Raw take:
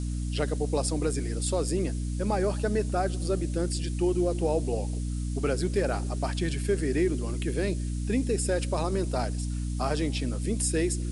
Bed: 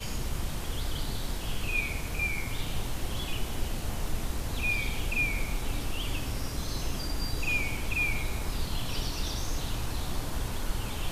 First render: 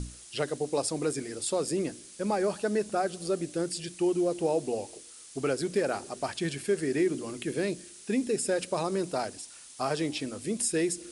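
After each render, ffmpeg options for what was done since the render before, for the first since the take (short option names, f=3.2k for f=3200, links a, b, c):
-af "bandreject=f=60:t=h:w=6,bandreject=f=120:t=h:w=6,bandreject=f=180:t=h:w=6,bandreject=f=240:t=h:w=6,bandreject=f=300:t=h:w=6"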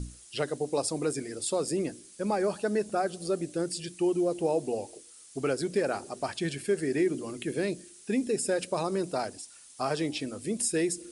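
-af "afftdn=nr=6:nf=-50"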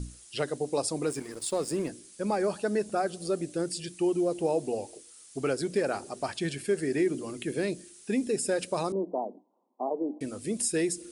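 -filter_complex "[0:a]asettb=1/sr,asplit=3[a][b][c];[a]atrim=end=1.064[d];[b]atrim=start=1.06:end=1.89,asetpts=PTS-STARTPTS,afade=t=in:d=0.004:c=qsin,afade=t=out:st=0.826:d=0.004:c=qsin,aeval=exprs='sgn(val(0))*max(abs(val(0))-0.00447,0)':c=same[e];[c]atrim=start=1.886[f];[d][e]acrossfade=d=0.004:c1=hsin:c2=qsin[g];[g][f]acrossfade=d=0.004:c1=qsin:c2=hsin,asettb=1/sr,asplit=3[h][i][j];[h]atrim=end=8.924[k];[i]atrim=start=8.92:end=10.21,asetpts=PTS-STARTPTS,afade=t=in:d=0.004:c=qsin,afade=t=out:st=1.286:d=0.004:c=qsin,asuperpass=centerf=440:order=20:qfactor=0.53[l];[j]atrim=start=10.206[m];[k][l]acrossfade=d=0.004:c1=hsin:c2=qsin[n];[n][m]acrossfade=d=0.004:c1=qsin:c2=hsin"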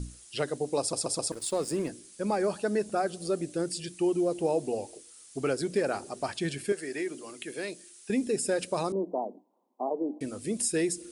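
-filter_complex "[0:a]asettb=1/sr,asplit=3[a][b][c];[a]atrim=end=6.724[d];[b]atrim=start=6.72:end=8.1,asetpts=PTS-STARTPTS,afade=t=in:d=0.004:c=qsin,afade=t=out:st=1.376:d=0.004:c=qsin,highpass=f=770:p=1[e];[c]atrim=start=8.096[f];[d][e]acrossfade=d=0.004:c1=hsin:c2=qsin[g];[g][f]acrossfade=d=0.004:c1=qsin:c2=hsin,asplit=5[h][i][j][k][l];[h]atrim=end=0.932[m];[i]atrim=start=0.798:end=0.932[n];[j]atrim=start=0.798:end=0.932[o];[k]atrim=start=0.798:end=0.932[p];[l]atrim=start=1.318[q];[m][n]acrossfade=d=0.004:c1=hsin:c2=hsin[r];[r][o]acrossfade=d=0.004:c1=hsin:c2=hsin[s];[s][p]acrossfade=d=0.004:c1=hsin:c2=hsin[t];[t][q]acrossfade=d=0.004:c1=hsin:c2=hsin"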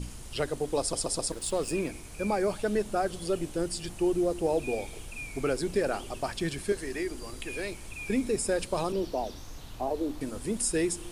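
-filter_complex "[1:a]volume=-12dB[a];[0:a][a]amix=inputs=2:normalize=0"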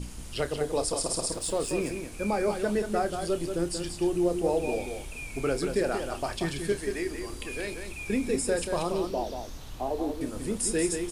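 -filter_complex "[0:a]asplit=2[a][b];[b]adelay=29,volume=-11.5dB[c];[a][c]amix=inputs=2:normalize=0,aecho=1:1:183:0.473"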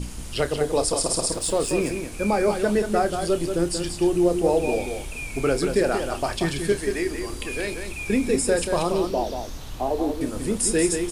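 -af "volume=6dB"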